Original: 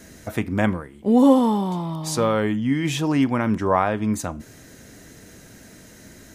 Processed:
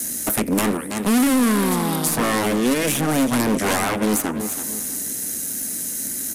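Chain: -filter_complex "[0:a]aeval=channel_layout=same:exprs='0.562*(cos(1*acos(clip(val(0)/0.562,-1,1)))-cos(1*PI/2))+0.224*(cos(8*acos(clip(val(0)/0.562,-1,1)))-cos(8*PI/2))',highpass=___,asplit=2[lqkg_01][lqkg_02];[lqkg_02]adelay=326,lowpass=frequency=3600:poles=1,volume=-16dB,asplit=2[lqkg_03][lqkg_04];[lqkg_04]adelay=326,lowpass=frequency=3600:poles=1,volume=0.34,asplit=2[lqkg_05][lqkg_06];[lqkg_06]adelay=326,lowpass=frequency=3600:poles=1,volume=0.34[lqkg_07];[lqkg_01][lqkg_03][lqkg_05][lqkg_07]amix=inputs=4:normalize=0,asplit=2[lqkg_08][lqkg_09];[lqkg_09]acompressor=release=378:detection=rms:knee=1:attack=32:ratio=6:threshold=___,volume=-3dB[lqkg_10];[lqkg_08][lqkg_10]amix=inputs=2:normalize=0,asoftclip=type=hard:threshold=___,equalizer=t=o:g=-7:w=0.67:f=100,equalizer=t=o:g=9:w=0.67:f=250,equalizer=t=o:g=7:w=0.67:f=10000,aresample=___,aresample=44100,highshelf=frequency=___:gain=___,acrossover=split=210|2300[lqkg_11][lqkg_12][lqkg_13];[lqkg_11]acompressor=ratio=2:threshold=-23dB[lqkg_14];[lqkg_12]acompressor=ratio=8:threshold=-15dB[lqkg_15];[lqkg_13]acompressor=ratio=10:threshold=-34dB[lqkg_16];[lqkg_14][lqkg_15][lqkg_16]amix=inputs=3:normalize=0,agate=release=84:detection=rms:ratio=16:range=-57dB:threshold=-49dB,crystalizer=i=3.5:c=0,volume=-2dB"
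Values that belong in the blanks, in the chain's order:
51, -24dB, -17dB, 32000, 7900, 11.5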